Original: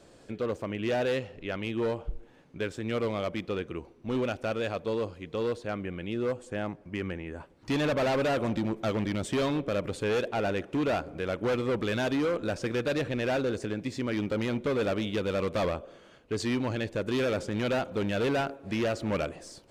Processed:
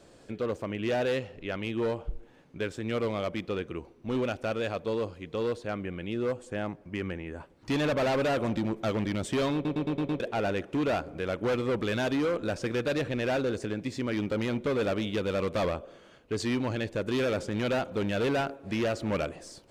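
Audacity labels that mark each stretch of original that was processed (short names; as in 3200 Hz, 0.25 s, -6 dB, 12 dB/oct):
9.540000	9.540000	stutter in place 0.11 s, 6 plays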